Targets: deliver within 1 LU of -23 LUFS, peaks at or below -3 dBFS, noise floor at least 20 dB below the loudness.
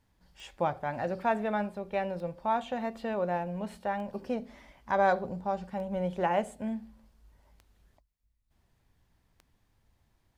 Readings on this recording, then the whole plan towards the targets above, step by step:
clicks 6; loudness -32.5 LUFS; peak -13.0 dBFS; loudness target -23.0 LUFS
-> de-click; gain +9.5 dB

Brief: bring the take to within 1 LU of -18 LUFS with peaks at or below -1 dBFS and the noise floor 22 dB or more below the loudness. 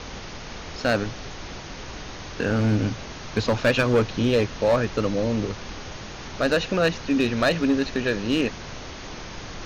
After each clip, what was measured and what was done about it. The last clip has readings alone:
clipped 0.7%; flat tops at -13.5 dBFS; noise floor -38 dBFS; noise floor target -46 dBFS; loudness -23.5 LUFS; peak -13.5 dBFS; loudness target -18.0 LUFS
-> clip repair -13.5 dBFS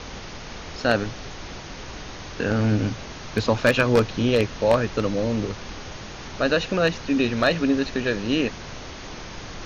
clipped 0.0%; noise floor -38 dBFS; noise floor target -45 dBFS
-> noise print and reduce 7 dB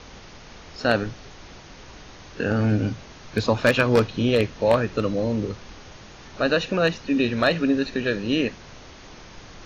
noise floor -45 dBFS; loudness -23.0 LUFS; peak -4.5 dBFS; loudness target -18.0 LUFS
-> gain +5 dB; limiter -1 dBFS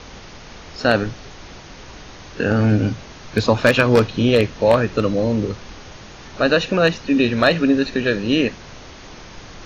loudness -18.0 LUFS; peak -1.0 dBFS; noise floor -40 dBFS

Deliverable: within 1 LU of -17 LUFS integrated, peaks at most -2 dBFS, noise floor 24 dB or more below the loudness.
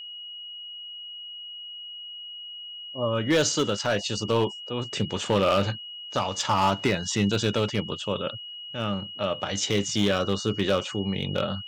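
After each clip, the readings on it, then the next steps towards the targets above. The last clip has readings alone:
clipped 0.7%; flat tops at -15.5 dBFS; steady tone 2900 Hz; tone level -37 dBFS; loudness -27.5 LUFS; peak -15.5 dBFS; loudness target -17.0 LUFS
-> clip repair -15.5 dBFS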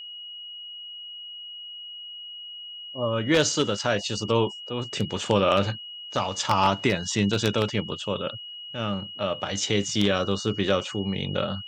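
clipped 0.0%; steady tone 2900 Hz; tone level -37 dBFS
-> notch 2900 Hz, Q 30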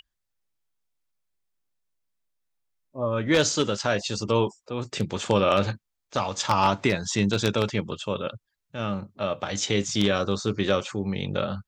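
steady tone none; loudness -26.0 LUFS; peak -6.5 dBFS; loudness target -17.0 LUFS
-> gain +9 dB; limiter -2 dBFS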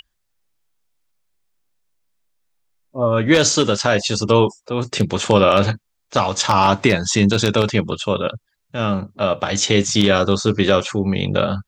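loudness -17.5 LUFS; peak -2.0 dBFS; noise floor -72 dBFS

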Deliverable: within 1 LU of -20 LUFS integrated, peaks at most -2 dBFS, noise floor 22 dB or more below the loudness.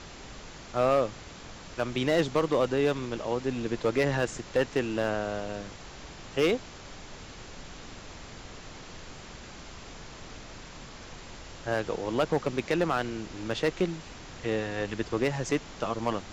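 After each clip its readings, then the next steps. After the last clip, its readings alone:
clipped 0.5%; flat tops at -17.5 dBFS; noise floor -46 dBFS; noise floor target -52 dBFS; loudness -29.5 LUFS; peak -17.5 dBFS; loudness target -20.0 LUFS
-> clip repair -17.5 dBFS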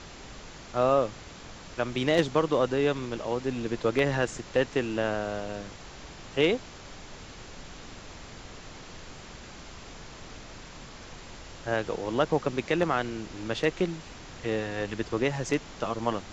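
clipped 0.0%; noise floor -46 dBFS; noise floor target -51 dBFS
-> noise print and reduce 6 dB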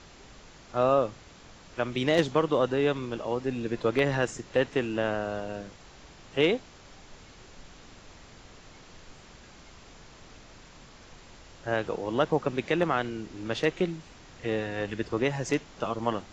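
noise floor -52 dBFS; loudness -29.0 LUFS; peak -8.5 dBFS; loudness target -20.0 LUFS
-> gain +9 dB; limiter -2 dBFS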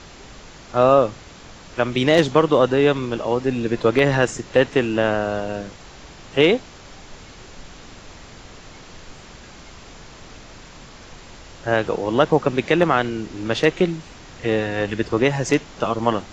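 loudness -20.0 LUFS; peak -2.0 dBFS; noise floor -43 dBFS

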